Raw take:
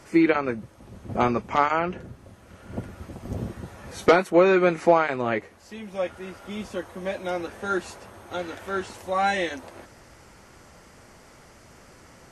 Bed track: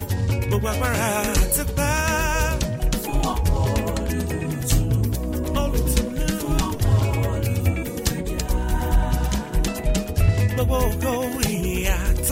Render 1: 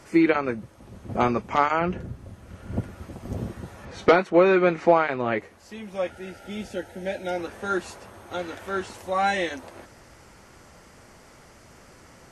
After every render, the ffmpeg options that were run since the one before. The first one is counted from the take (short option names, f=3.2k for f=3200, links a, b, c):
-filter_complex "[0:a]asettb=1/sr,asplit=3[a][b][c];[a]atrim=end=1.814[d];[b]atrim=start=1.81:end=2.81,asetpts=PTS-STARTPTS,afade=t=in:d=0.004:c=qsin,afade=t=out:st=0.996:d=0.004:c=qsin,lowshelf=f=210:g=8.5[e];[c]atrim=start=2.806[f];[d][e]acrossfade=d=0.004:c1=hsin:c2=qsin[g];[g][f]acrossfade=d=0.004:c1=qsin:c2=hsin,asettb=1/sr,asplit=3[h][i][j];[h]atrim=end=3.854[k];[i]atrim=start=3.85:end=5.38,asetpts=PTS-STARTPTS,afade=t=in:d=0.004:c=qsin,afade=t=out:st=1.526:d=0.004:c=qsin,lowpass=4.8k[l];[j]atrim=start=5.376[m];[k][l]acrossfade=d=0.004:c1=hsin:c2=qsin[n];[n][m]acrossfade=d=0.004:c1=qsin:c2=hsin,asettb=1/sr,asplit=3[o][p][q];[o]atrim=end=6.104[r];[p]atrim=start=6.1:end=7.39,asetpts=PTS-STARTPTS,afade=t=in:d=0.004:c=qsin,afade=t=out:st=1.286:d=0.004:c=qsin,asuperstop=centerf=1100:order=20:qfactor=3.1[s];[q]atrim=start=7.386[t];[r][s]acrossfade=d=0.004:c1=hsin:c2=qsin[u];[u][t]acrossfade=d=0.004:c1=qsin:c2=hsin"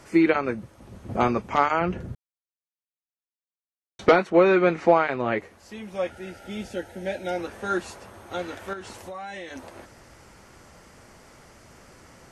-filter_complex "[0:a]asettb=1/sr,asplit=3[a][b][c];[a]atrim=end=8.734[d];[b]atrim=start=8.73:end=9.56,asetpts=PTS-STARTPTS,afade=t=in:d=0.004:c=qsin,afade=t=out:st=0.826:d=0.004:c=qsin,acompressor=threshold=-34dB:ratio=6:attack=3.2:release=140:knee=1:detection=peak[e];[c]atrim=start=9.556[f];[d][e]acrossfade=d=0.004:c1=hsin:c2=qsin[g];[g][f]acrossfade=d=0.004:c1=qsin:c2=hsin,asplit=3[h][i][j];[h]atrim=end=2.15,asetpts=PTS-STARTPTS,afade=t=out:st=2.146:d=0.004:c=hsin[k];[i]atrim=start=2.15:end=3.99,asetpts=PTS-STARTPTS,volume=0[l];[j]atrim=start=3.99,asetpts=PTS-STARTPTS,afade=t=in:d=0.004:c=hsin[m];[k][l][m]concat=n=3:v=0:a=1"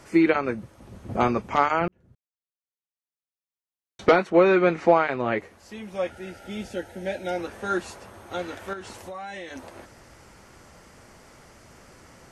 -filter_complex "[0:a]asplit=2[a][b];[a]atrim=end=1.88,asetpts=PTS-STARTPTS,afade=t=out:st=1.876:d=0.004:c=hsin[c];[b]atrim=start=1.88,asetpts=PTS-STARTPTS,afade=t=in:d=2.4[d];[c][d]concat=n=2:v=0:a=1"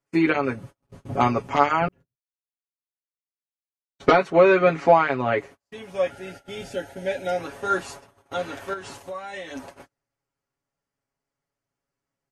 -af "agate=range=-38dB:threshold=-42dB:ratio=16:detection=peak,aecho=1:1:7.2:0.82"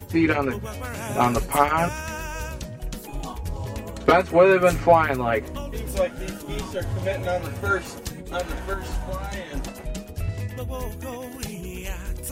-filter_complex "[1:a]volume=-10.5dB[a];[0:a][a]amix=inputs=2:normalize=0"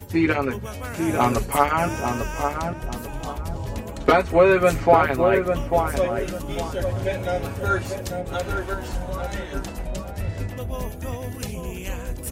-filter_complex "[0:a]asplit=2[a][b];[b]adelay=845,lowpass=f=1.1k:p=1,volume=-4dB,asplit=2[c][d];[d]adelay=845,lowpass=f=1.1k:p=1,volume=0.34,asplit=2[e][f];[f]adelay=845,lowpass=f=1.1k:p=1,volume=0.34,asplit=2[g][h];[h]adelay=845,lowpass=f=1.1k:p=1,volume=0.34[i];[a][c][e][g][i]amix=inputs=5:normalize=0"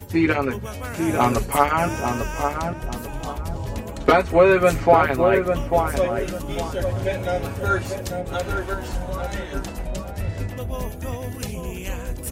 -af "volume=1dB,alimiter=limit=-2dB:level=0:latency=1"